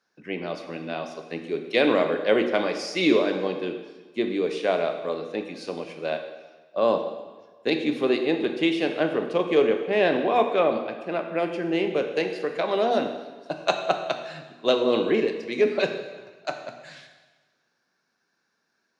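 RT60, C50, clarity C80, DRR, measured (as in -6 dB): 1.3 s, 7.5 dB, 9.0 dB, 5.5 dB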